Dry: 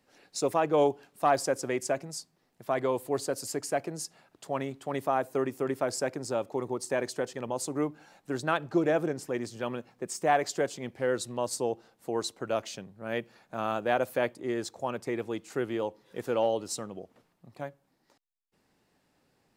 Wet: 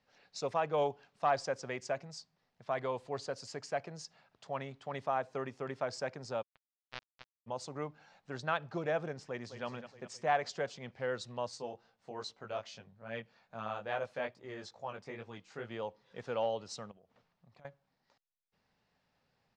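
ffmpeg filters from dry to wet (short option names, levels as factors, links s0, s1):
-filter_complex "[0:a]asplit=3[s0][s1][s2];[s0]afade=t=out:st=6.41:d=0.02[s3];[s1]acrusher=bits=2:mix=0:aa=0.5,afade=t=in:st=6.41:d=0.02,afade=t=out:st=7.46:d=0.02[s4];[s2]afade=t=in:st=7.46:d=0.02[s5];[s3][s4][s5]amix=inputs=3:normalize=0,asplit=2[s6][s7];[s7]afade=t=in:st=9.23:d=0.01,afade=t=out:st=9.65:d=0.01,aecho=0:1:210|420|630|840|1050|1260|1470:0.316228|0.189737|0.113842|0.0683052|0.0409831|0.0245899|0.0147539[s8];[s6][s8]amix=inputs=2:normalize=0,asettb=1/sr,asplit=3[s9][s10][s11];[s9]atrim=end=11.514[s12];[s10]atrim=start=11.51:end=15.71,asetpts=PTS-STARTPTS,afade=t=in:d=0.004:c=qsin,afade=t=out:st=4.196:d=0.004:c=qsin,flanger=delay=17.5:depth=3.2:speed=2.4[s13];[s11]atrim=start=15.706[s14];[s12][s13]acrossfade=d=0.004:c1=hsin:c2=qsin[s15];[s15][s14]acrossfade=d=0.004:c1=qsin:c2=hsin,asettb=1/sr,asplit=3[s16][s17][s18];[s16]atrim=end=16.914[s19];[s17]atrim=start=16.91:end=17.65,asetpts=PTS-STARTPTS,afade=t=in:d=0.004:c=qsin,afade=t=out:st=0.736:d=0.004:c=qsin,acompressor=threshold=0.00251:ratio=5:attack=3.2:release=140:knee=1:detection=peak[s20];[s18]atrim=start=17.646[s21];[s19][s20]acrossfade=d=0.004:c1=hsin:c2=qsin[s22];[s22][s21]acrossfade=d=0.004:c1=qsin:c2=hsin,lowpass=f=5700:w=0.5412,lowpass=f=5700:w=1.3066,equalizer=f=320:t=o:w=0.71:g=-12,volume=0.596"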